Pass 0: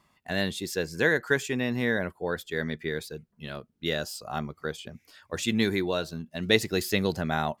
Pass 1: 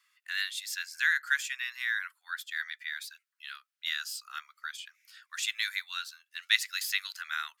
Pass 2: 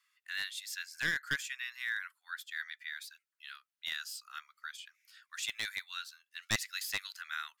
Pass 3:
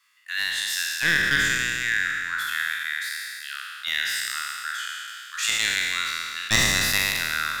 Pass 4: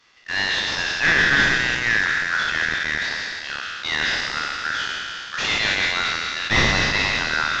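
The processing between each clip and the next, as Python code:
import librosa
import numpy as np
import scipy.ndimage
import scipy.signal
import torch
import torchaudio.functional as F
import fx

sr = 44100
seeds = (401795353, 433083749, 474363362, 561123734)

y1 = scipy.signal.sosfilt(scipy.signal.butter(8, 1300.0, 'highpass', fs=sr, output='sos'), x)
y2 = np.minimum(y1, 2.0 * 10.0 ** (-21.5 / 20.0) - y1)
y2 = y2 * 10.0 ** (-5.0 / 20.0)
y3 = fx.spec_trails(y2, sr, decay_s=2.59)
y3 = y3 * 10.0 ** (8.5 / 20.0)
y4 = fx.cvsd(y3, sr, bps=32000)
y4 = y4 * 10.0 ** (6.5 / 20.0)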